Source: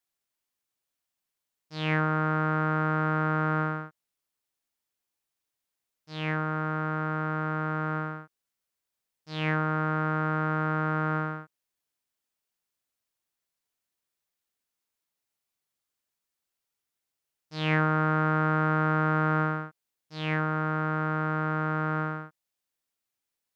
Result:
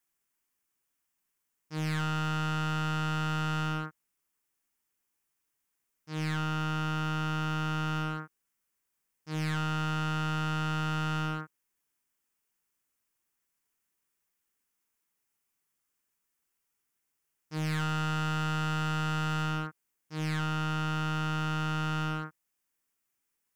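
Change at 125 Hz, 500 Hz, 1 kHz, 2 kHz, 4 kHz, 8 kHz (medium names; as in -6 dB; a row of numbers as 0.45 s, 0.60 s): -2.0 dB, -10.5 dB, -5.5 dB, -6.0 dB, +5.5 dB, no reading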